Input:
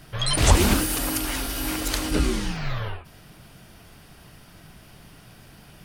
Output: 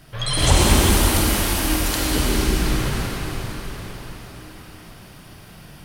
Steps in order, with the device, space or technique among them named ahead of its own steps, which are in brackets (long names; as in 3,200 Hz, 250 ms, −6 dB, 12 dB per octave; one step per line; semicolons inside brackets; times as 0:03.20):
cathedral (convolution reverb RT60 5.4 s, pre-delay 44 ms, DRR −5 dB)
level −1 dB